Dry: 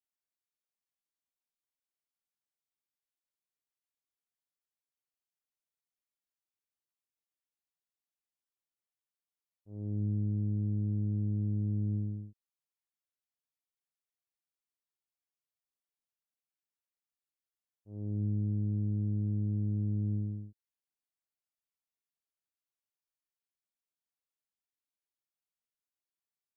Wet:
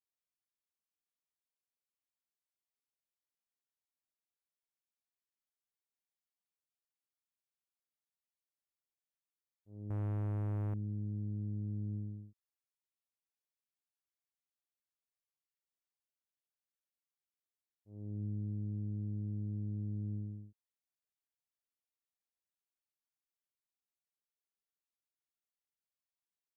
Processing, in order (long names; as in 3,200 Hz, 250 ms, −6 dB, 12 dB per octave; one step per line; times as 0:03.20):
0:09.90–0:10.74: leveller curve on the samples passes 3
level −7 dB